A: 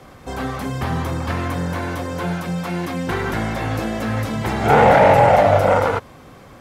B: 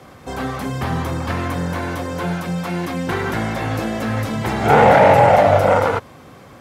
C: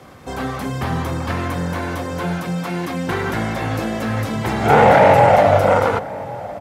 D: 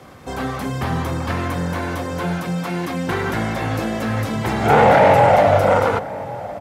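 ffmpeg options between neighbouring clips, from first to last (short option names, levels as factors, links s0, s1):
-af "highpass=67,volume=1.12"
-filter_complex "[0:a]asplit=2[s0][s1];[s1]adelay=1108,volume=0.141,highshelf=f=4000:g=-24.9[s2];[s0][s2]amix=inputs=2:normalize=0"
-af "asoftclip=type=tanh:threshold=0.708"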